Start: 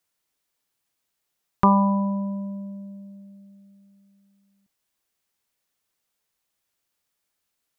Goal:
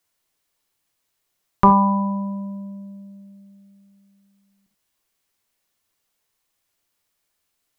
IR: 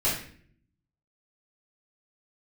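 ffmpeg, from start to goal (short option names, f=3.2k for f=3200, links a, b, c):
-filter_complex "[0:a]asplit=2[a][b];[1:a]atrim=start_sample=2205,atrim=end_sample=3969[c];[b][c]afir=irnorm=-1:irlink=0,volume=-16.5dB[d];[a][d]amix=inputs=2:normalize=0,volume=2.5dB"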